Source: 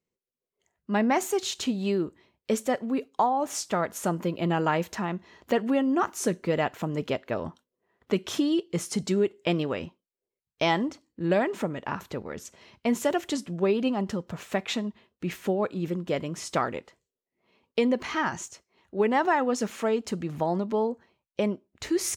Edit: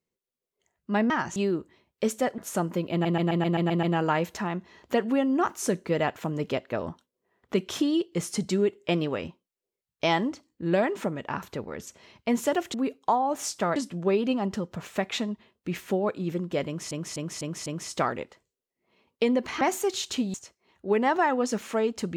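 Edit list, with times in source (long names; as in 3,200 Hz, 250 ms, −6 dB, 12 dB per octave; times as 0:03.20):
0:01.10–0:01.83: swap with 0:18.17–0:18.43
0:02.85–0:03.87: move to 0:13.32
0:04.41: stutter 0.13 s, 8 plays
0:16.22–0:16.47: repeat, 5 plays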